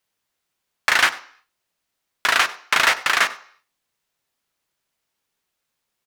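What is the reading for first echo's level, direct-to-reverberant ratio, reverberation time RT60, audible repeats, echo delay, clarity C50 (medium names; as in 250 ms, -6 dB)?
-21.0 dB, 11.0 dB, 0.55 s, 1, 97 ms, 15.5 dB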